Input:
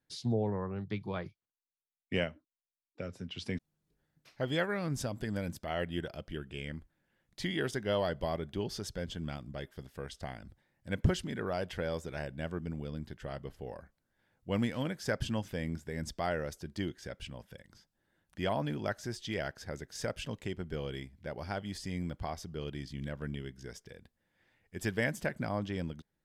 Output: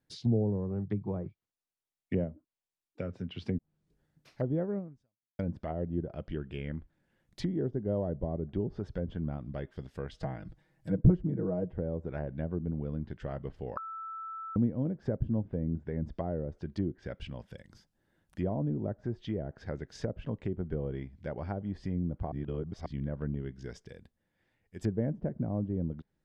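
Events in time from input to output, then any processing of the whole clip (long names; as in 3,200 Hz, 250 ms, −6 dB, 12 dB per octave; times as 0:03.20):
0:04.78–0:05.39: fade out exponential
0:10.13–0:11.73: comb filter 6.3 ms, depth 92%
0:13.77–0:14.56: beep over 1,320 Hz −20.5 dBFS
0:22.32–0:22.86: reverse
0:23.80–0:24.84: fade out quadratic, to −6.5 dB
whole clip: treble cut that deepens with the level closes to 480 Hz, closed at −32 dBFS; tilt shelving filter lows +3 dB, about 680 Hz; level +2 dB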